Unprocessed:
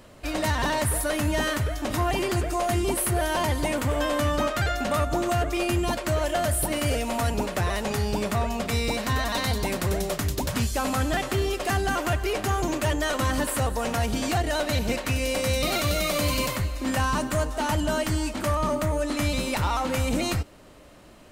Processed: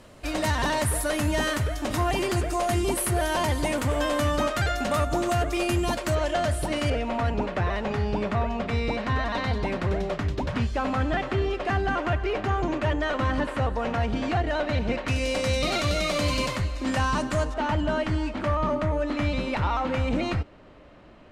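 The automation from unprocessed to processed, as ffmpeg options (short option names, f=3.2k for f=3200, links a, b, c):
-af "asetnsamples=n=441:p=0,asendcmd='6.15 lowpass f 5800;6.9 lowpass f 2700;15.08 lowpass f 6400;17.54 lowpass f 2900',lowpass=12k"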